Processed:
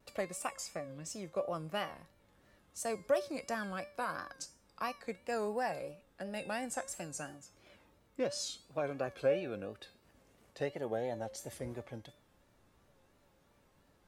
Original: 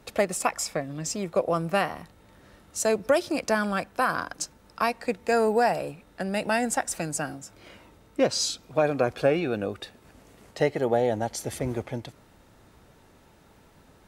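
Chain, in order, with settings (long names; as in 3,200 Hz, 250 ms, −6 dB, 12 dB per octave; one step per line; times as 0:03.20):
tuned comb filter 560 Hz, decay 0.41 s, mix 80%
pitch vibrato 2.9 Hz 95 cents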